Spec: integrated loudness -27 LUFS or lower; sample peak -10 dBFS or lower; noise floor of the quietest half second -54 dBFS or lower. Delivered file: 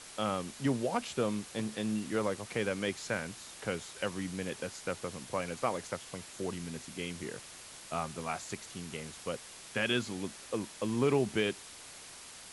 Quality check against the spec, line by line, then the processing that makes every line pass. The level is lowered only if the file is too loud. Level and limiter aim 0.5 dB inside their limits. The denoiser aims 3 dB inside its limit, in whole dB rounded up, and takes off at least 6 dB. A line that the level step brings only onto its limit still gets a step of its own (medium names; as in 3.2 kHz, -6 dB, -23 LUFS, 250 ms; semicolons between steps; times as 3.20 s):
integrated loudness -35.5 LUFS: pass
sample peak -17.0 dBFS: pass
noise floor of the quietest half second -50 dBFS: fail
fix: noise reduction 7 dB, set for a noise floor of -50 dBFS